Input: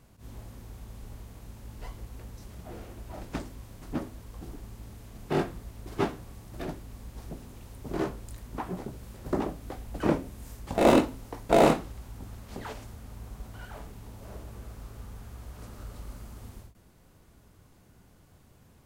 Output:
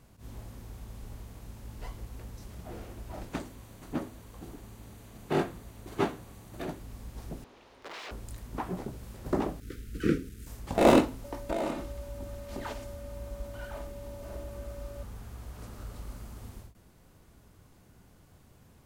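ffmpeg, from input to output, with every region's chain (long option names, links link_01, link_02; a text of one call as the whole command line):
ffmpeg -i in.wav -filter_complex "[0:a]asettb=1/sr,asplit=3[link_01][link_02][link_03];[link_01]atrim=end=3.294[link_04];[link_02]atrim=start=3.29:end=6.8,asetpts=PTS-STARTPTS,afade=type=in:duration=0.004:curve=qsin,afade=type=out:start_time=3.506:duration=0.004:curve=qsin,lowshelf=frequency=76:gain=-9.5,bandreject=frequency=5200:width=9.9[link_05];[link_03]atrim=start=6.796[link_06];[link_04][link_05]acrossfade=duration=0.004:curve1=hsin:curve2=qsin[link_07];[link_07][link_06]acrossfade=duration=0.004:curve1=qsin:curve2=hsin,asettb=1/sr,asplit=3[link_08][link_09][link_10];[link_08]atrim=end=7.444[link_11];[link_09]atrim=start=7.44:end=8.11,asetpts=PTS-STARTPTS,afade=type=in:duration=0.004:curve=qsin,afade=type=out:start_time=0.666:duration=0.004:curve=qsin,bandreject=frequency=7700:width=18,aeval=exprs='(mod(56.2*val(0)+1,2)-1)/56.2':channel_layout=same,acrossover=split=310 5100:gain=0.0794 1 0.0708[link_12][link_13][link_14];[link_12][link_13][link_14]amix=inputs=3:normalize=0[link_15];[link_10]atrim=start=8.106[link_16];[link_11][link_15]acrossfade=duration=0.004:curve1=hsin:curve2=qsin[link_17];[link_17][link_16]acrossfade=duration=0.004:curve1=qsin:curve2=hsin,asettb=1/sr,asplit=3[link_18][link_19][link_20];[link_18]atrim=end=9.604[link_21];[link_19]atrim=start=9.6:end=10.47,asetpts=PTS-STARTPTS,afade=type=in:duration=0.004:curve=qsin,afade=type=out:start_time=0.866:duration=0.004:curve=qsin,aeval=exprs='sgn(val(0))*max(abs(val(0))-0.00178,0)':channel_layout=same,asuperstop=centerf=790:order=12:qfactor=0.95[link_22];[link_20]atrim=start=10.466[link_23];[link_21][link_22]acrossfade=duration=0.004:curve1=hsin:curve2=qsin[link_24];[link_24][link_23]acrossfade=duration=0.004:curve1=qsin:curve2=hsin,asettb=1/sr,asplit=3[link_25][link_26][link_27];[link_25]atrim=end=11.244[link_28];[link_26]atrim=start=11.24:end=15.03,asetpts=PTS-STARTPTS,afade=type=in:duration=0.004:curve=qsin,afade=type=out:start_time=3.786:duration=0.004:curve=qsin,acompressor=threshold=-29dB:ratio=6:attack=3.2:release=140:knee=1:detection=peak,aeval=exprs='val(0)+0.00501*sin(2*PI*570*n/s)':channel_layout=same,aecho=1:1:3.3:0.43,atrim=end_sample=167139[link_29];[link_27]atrim=start=15.026[link_30];[link_28][link_29]acrossfade=duration=0.004:curve1=hsin:curve2=qsin[link_31];[link_31][link_30]acrossfade=duration=0.004:curve1=qsin:curve2=hsin" out.wav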